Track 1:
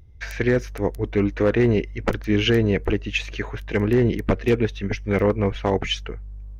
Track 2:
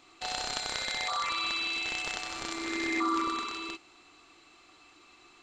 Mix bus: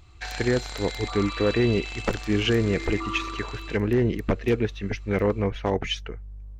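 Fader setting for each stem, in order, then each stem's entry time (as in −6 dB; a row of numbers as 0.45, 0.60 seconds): −3.5, −3.5 decibels; 0.00, 0.00 seconds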